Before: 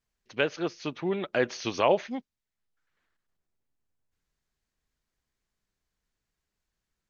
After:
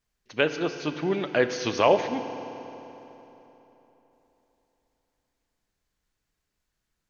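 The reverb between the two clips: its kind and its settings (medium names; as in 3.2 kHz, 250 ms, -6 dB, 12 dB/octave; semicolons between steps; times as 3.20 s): FDN reverb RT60 3.6 s, high-frequency decay 0.8×, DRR 8.5 dB; trim +3 dB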